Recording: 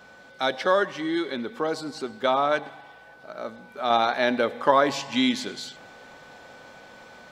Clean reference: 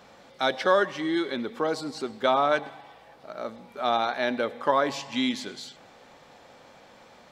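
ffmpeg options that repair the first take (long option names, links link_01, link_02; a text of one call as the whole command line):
ffmpeg -i in.wav -af "bandreject=frequency=1500:width=30,asetnsamples=nb_out_samples=441:pad=0,asendcmd='3.9 volume volume -4dB',volume=0dB" out.wav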